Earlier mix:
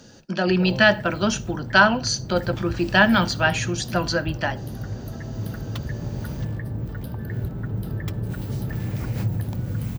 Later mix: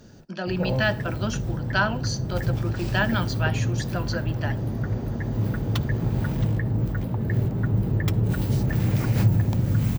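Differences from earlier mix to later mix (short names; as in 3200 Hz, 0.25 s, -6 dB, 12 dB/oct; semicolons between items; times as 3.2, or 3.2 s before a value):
speech -8.0 dB; first sound +5.5 dB; second sound -9.0 dB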